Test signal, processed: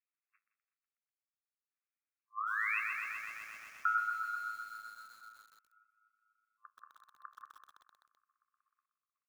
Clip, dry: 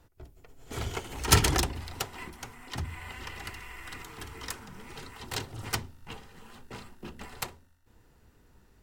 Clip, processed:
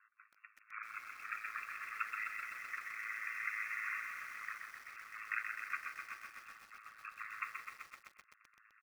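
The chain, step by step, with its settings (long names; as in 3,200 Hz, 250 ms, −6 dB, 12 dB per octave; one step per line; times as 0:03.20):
brick-wall band-pass 1,100–2,700 Hz
downward compressor 3 to 1, threshold −37 dBFS
spectral peaks only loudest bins 32
flanger 0.48 Hz, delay 9.3 ms, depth 5.5 ms, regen −66%
on a send: echo machine with several playback heads 123 ms, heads all three, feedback 60%, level −20 dB
on the sum: sample-and-hold tremolo, depth 80%
repeating echo 166 ms, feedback 27%, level −13 dB
ring modulation 54 Hz
feedback echo at a low word length 128 ms, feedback 80%, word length 12 bits, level −5 dB
level +14 dB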